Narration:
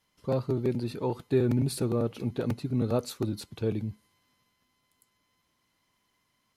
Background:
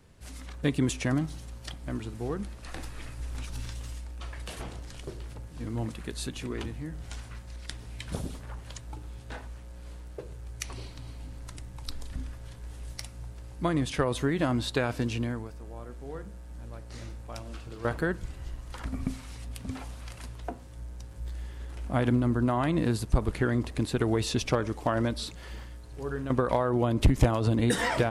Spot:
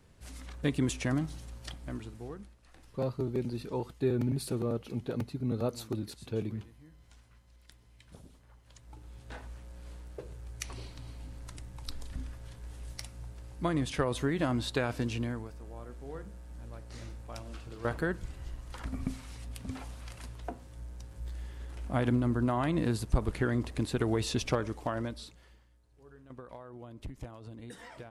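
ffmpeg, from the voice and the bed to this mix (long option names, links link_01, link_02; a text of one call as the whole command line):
ffmpeg -i stem1.wav -i stem2.wav -filter_complex "[0:a]adelay=2700,volume=-4.5dB[link_01];[1:a]volume=12.5dB,afade=type=out:start_time=1.71:duration=0.87:silence=0.16788,afade=type=in:start_time=8.63:duration=0.88:silence=0.16788,afade=type=out:start_time=24.51:duration=1.08:silence=0.11885[link_02];[link_01][link_02]amix=inputs=2:normalize=0" out.wav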